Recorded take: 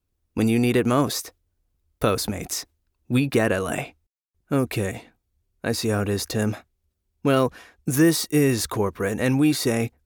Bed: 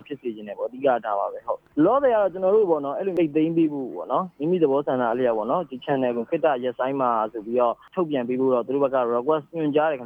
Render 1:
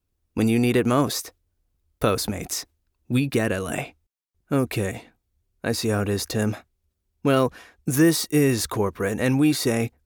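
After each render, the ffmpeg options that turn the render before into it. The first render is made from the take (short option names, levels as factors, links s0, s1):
-filter_complex "[0:a]asettb=1/sr,asplit=3[s0][s1][s2];[s0]atrim=end=3.124[s3];[s1]atrim=start=3.12:end=3.74,asetpts=PTS-STARTPTS,afade=t=in:d=0.004:c=qsin,afade=t=out:st=0.616:d=0.004:c=qsin,equalizer=f=880:t=o:w=2.2:g=-5[s4];[s2]atrim=start=3.736[s5];[s3][s4]acrossfade=d=0.004:c1=hsin:c2=qsin[s6];[s6][s5]acrossfade=d=0.004:c1=qsin:c2=hsin"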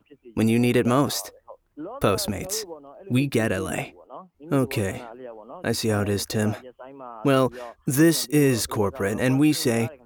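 -filter_complex "[1:a]volume=0.133[s0];[0:a][s0]amix=inputs=2:normalize=0"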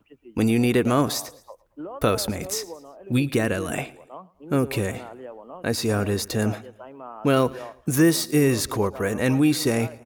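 -af "aecho=1:1:112|224|336:0.0841|0.0362|0.0156"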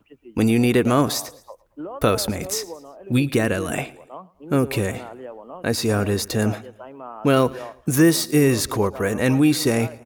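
-af "volume=1.33"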